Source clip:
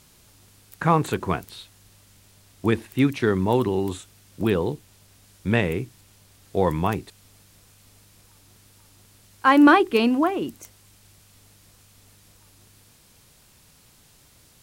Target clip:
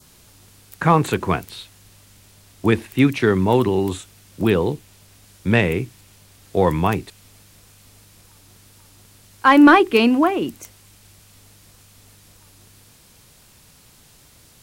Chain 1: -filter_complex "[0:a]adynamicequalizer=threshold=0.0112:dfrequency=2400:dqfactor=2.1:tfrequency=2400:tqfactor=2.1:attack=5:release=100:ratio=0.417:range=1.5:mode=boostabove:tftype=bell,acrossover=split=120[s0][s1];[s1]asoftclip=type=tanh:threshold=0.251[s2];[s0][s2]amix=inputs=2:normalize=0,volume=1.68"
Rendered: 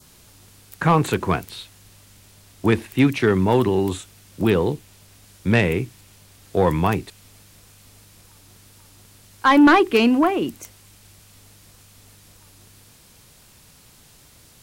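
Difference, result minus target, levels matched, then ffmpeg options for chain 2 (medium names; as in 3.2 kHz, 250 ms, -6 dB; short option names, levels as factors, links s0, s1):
saturation: distortion +10 dB
-filter_complex "[0:a]adynamicequalizer=threshold=0.0112:dfrequency=2400:dqfactor=2.1:tfrequency=2400:tqfactor=2.1:attack=5:release=100:ratio=0.417:range=1.5:mode=boostabove:tftype=bell,acrossover=split=120[s0][s1];[s1]asoftclip=type=tanh:threshold=0.596[s2];[s0][s2]amix=inputs=2:normalize=0,volume=1.68"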